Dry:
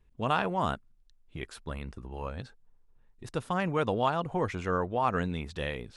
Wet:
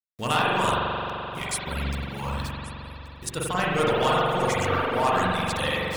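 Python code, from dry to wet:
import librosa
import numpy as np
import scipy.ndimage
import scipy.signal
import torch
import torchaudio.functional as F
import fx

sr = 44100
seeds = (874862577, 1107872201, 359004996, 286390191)

p1 = fx.peak_eq(x, sr, hz=9800.0, db=13.5, octaves=1.6)
p2 = 10.0 ** (-27.5 / 20.0) * (np.abs((p1 / 10.0 ** (-27.5 / 20.0) + 3.0) % 4.0 - 2.0) - 1.0)
p3 = p1 + (p2 * librosa.db_to_amplitude(-9.0))
p4 = fx.vibrato(p3, sr, rate_hz=1.8, depth_cents=5.8)
p5 = np.where(np.abs(p4) >= 10.0 ** (-46.5 / 20.0), p4, 0.0)
p6 = fx.high_shelf(p5, sr, hz=2100.0, db=9.5)
p7 = p6 + 10.0 ** (-18.5 / 20.0) * np.pad(p6, (int(1130 * sr / 1000.0), 0))[:len(p6)]
p8 = fx.rev_spring(p7, sr, rt60_s=3.8, pass_ms=(43,), chirp_ms=40, drr_db=-8.0)
p9 = fx.dereverb_blind(p8, sr, rt60_s=0.96)
y = p9 * librosa.db_to_amplitude(-2.5)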